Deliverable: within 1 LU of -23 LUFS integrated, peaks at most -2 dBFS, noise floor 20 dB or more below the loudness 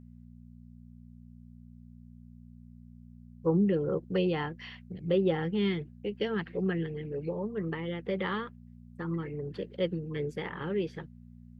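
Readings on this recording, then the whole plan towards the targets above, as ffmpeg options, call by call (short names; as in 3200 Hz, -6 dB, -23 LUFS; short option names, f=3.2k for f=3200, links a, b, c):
hum 60 Hz; harmonics up to 240 Hz; hum level -50 dBFS; loudness -32.5 LUFS; peak -16.5 dBFS; loudness target -23.0 LUFS
-> -af "bandreject=f=60:t=h:w=4,bandreject=f=120:t=h:w=4,bandreject=f=180:t=h:w=4,bandreject=f=240:t=h:w=4"
-af "volume=9.5dB"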